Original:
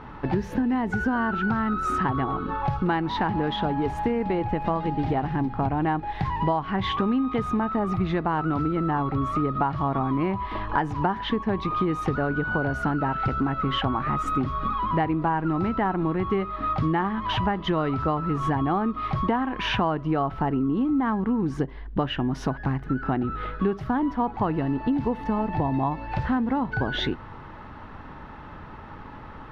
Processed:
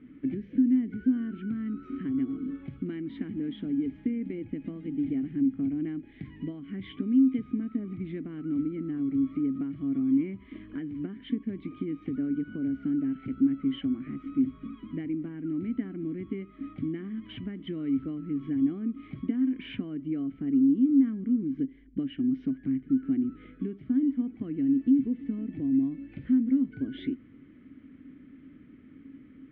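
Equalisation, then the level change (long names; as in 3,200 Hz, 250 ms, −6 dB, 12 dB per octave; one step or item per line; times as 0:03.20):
formant filter i
high-frequency loss of the air 180 metres
spectral tilt −2 dB per octave
+1.0 dB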